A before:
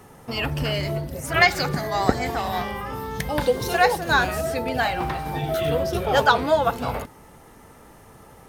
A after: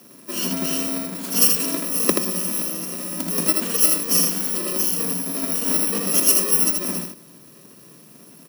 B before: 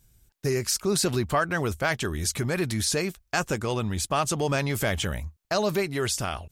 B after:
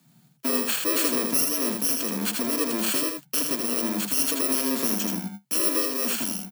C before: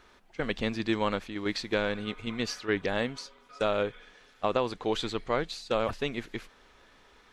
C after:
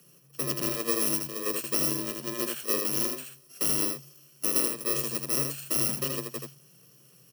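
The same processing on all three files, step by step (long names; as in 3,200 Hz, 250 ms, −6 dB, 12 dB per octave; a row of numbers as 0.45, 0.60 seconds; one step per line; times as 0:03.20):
samples in bit-reversed order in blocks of 64 samples
frequency shifter +120 Hz
single-tap delay 80 ms −4.5 dB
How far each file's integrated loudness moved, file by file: +4.0, +3.5, +4.0 LU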